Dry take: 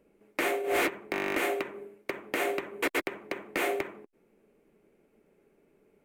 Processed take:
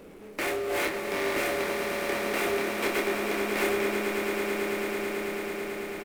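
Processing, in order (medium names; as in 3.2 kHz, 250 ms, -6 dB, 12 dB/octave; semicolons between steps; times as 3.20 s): power-law waveshaper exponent 0.5; doubling 28 ms -5 dB; echo with a slow build-up 110 ms, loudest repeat 8, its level -9.5 dB; trim -6 dB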